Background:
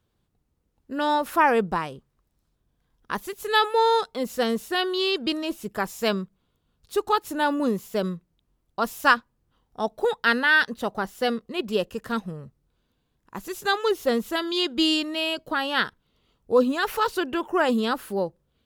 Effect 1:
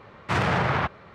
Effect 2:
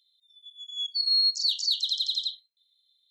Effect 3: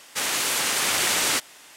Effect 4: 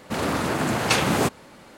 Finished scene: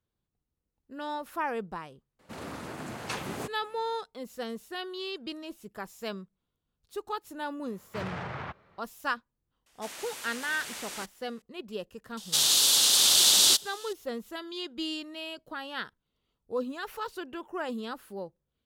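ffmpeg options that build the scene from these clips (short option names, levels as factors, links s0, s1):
-filter_complex "[3:a]asplit=2[s0][s1];[0:a]volume=0.237[s2];[s1]highshelf=f=2800:t=q:w=3:g=9[s3];[4:a]atrim=end=1.77,asetpts=PTS-STARTPTS,volume=0.168,afade=t=in:d=0.004:c=hsin,afade=t=out:st=1.766:d=0.004:c=hsin,adelay=2190[s4];[1:a]atrim=end=1.14,asetpts=PTS-STARTPTS,volume=0.2,afade=t=in:d=0.004:c=hsin,afade=t=out:st=1.136:d=0.004:c=hsin,adelay=7650[s5];[s0]atrim=end=1.76,asetpts=PTS-STARTPTS,volume=0.126,afade=t=in:d=0.004:c=hsin,afade=t=out:st=1.756:d=0.004:c=hsin,adelay=9660[s6];[s3]atrim=end=1.76,asetpts=PTS-STARTPTS,volume=0.422,afade=t=in:d=0.004:c=hsin,afade=t=out:st=1.756:d=0.004:c=hsin,adelay=12170[s7];[s2][s4][s5][s6][s7]amix=inputs=5:normalize=0"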